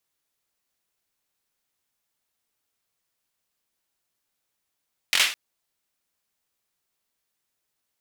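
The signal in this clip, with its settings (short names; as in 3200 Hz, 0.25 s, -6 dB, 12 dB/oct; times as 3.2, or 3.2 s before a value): hand clap length 0.21 s, apart 22 ms, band 2700 Hz, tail 0.39 s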